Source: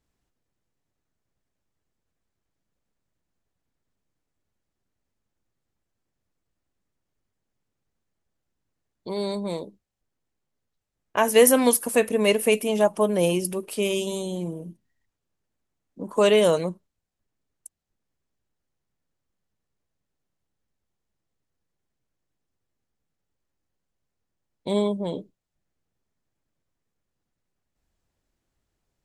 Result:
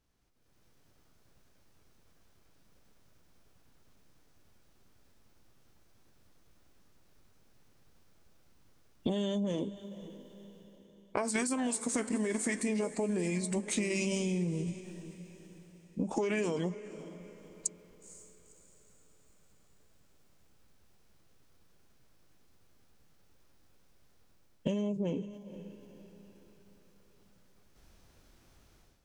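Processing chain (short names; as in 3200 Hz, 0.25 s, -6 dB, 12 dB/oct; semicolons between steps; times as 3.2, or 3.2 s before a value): AGC gain up to 16 dB; limiter -9 dBFS, peak gain reduction 8 dB; compressor 12:1, threshold -29 dBFS, peak gain reduction 16 dB; on a send: diffused feedback echo 0.493 s, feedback 44%, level -14 dB; on the sum: formant shift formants -4 st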